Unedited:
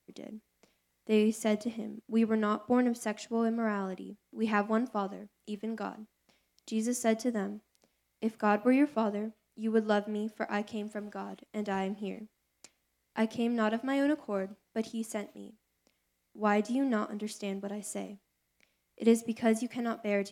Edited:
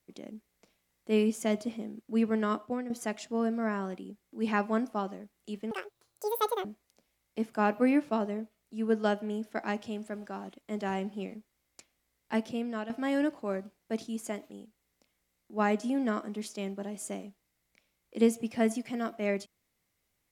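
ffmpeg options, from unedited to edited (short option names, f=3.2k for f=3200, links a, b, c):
-filter_complex "[0:a]asplit=5[a][b][c][d][e];[a]atrim=end=2.9,asetpts=PTS-STARTPTS,afade=t=out:st=2.58:d=0.32:c=qua:silence=0.281838[f];[b]atrim=start=2.9:end=5.714,asetpts=PTS-STARTPTS,afade=t=in:d=0.004:c=hsin:silence=0.281838[g];[c]atrim=start=5.71:end=7.5,asetpts=PTS-STARTPTS,asetrate=84231,aresample=44100,atrim=end_sample=41329,asetpts=PTS-STARTPTS[h];[d]atrim=start=7.496:end=13.75,asetpts=PTS-STARTPTS,afade=t=out:st=5.714:d=0.54:silence=0.316228[i];[e]atrim=start=13.75,asetpts=PTS-STARTPTS,afade=t=in:d=0.004:c=hsin:silence=0.316228[j];[f][g]concat=n=2:v=0:a=1[k];[k][h]acrossfade=d=0.004:c1=hsin:c2=hsin[l];[i][j]concat=n=2:v=0:a=1[m];[l][m]acrossfade=d=0.004:c1=hsin:c2=hsin"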